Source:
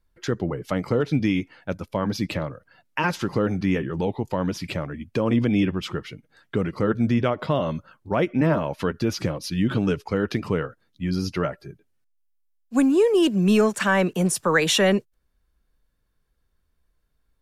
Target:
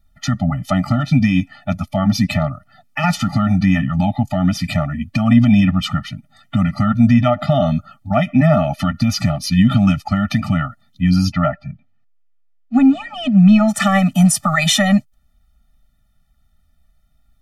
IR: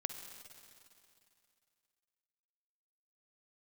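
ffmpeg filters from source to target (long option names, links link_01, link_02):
-filter_complex "[0:a]asplit=3[link_01][link_02][link_03];[link_01]afade=type=out:start_time=11.31:duration=0.02[link_04];[link_02]lowpass=2700,afade=type=in:start_time=11.31:duration=0.02,afade=type=out:start_time=13.67:duration=0.02[link_05];[link_03]afade=type=in:start_time=13.67:duration=0.02[link_06];[link_04][link_05][link_06]amix=inputs=3:normalize=0,alimiter=level_in=13dB:limit=-1dB:release=50:level=0:latency=1,afftfilt=real='re*eq(mod(floor(b*sr/1024/290),2),0)':imag='im*eq(mod(floor(b*sr/1024/290),2),0)':win_size=1024:overlap=0.75,volume=-1dB"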